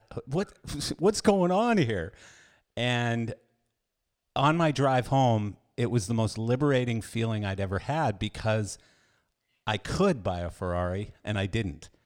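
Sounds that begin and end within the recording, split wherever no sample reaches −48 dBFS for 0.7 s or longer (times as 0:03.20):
0:04.36–0:08.80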